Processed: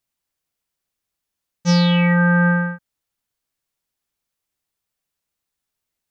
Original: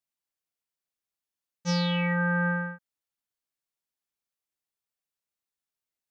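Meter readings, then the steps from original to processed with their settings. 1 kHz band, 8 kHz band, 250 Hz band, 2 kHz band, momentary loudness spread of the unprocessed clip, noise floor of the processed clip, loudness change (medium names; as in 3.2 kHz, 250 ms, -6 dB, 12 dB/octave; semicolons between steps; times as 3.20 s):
+8.5 dB, no reading, +12.0 dB, +8.5 dB, 10 LU, -82 dBFS, +11.0 dB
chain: bass shelf 150 Hz +8 dB; trim +8.5 dB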